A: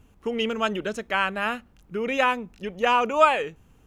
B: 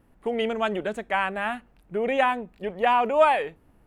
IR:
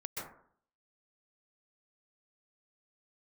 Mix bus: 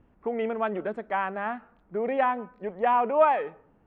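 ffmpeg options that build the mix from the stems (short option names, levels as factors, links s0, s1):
-filter_complex "[0:a]volume=0.422,asplit=2[s0][s1];[s1]volume=0.0841[s2];[1:a]highpass=f=120:w=0.5412,highpass=f=120:w=1.3066,volume=0.794,asplit=2[s3][s4];[s4]apad=whole_len=170350[s5];[s0][s5]sidechaincompress=threshold=0.0316:ratio=4:attack=5.8:release=739[s6];[2:a]atrim=start_sample=2205[s7];[s2][s7]afir=irnorm=-1:irlink=0[s8];[s6][s3][s8]amix=inputs=3:normalize=0,lowpass=1900"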